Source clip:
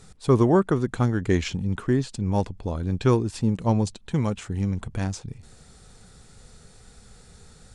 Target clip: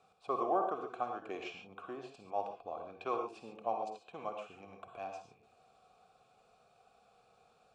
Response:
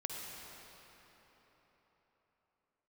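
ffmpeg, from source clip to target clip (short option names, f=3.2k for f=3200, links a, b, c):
-filter_complex "[0:a]acrossover=split=280|2300[a][b][c];[a]acompressor=threshold=-36dB:ratio=6[d];[d][b][c]amix=inputs=3:normalize=0,asplit=3[e][f][g];[e]bandpass=f=730:t=q:w=8,volume=0dB[h];[f]bandpass=f=1.09k:t=q:w=8,volume=-6dB[i];[g]bandpass=f=2.44k:t=q:w=8,volume=-9dB[j];[h][i][j]amix=inputs=3:normalize=0[k];[1:a]atrim=start_sample=2205,atrim=end_sample=6615[l];[k][l]afir=irnorm=-1:irlink=0,volume=3.5dB"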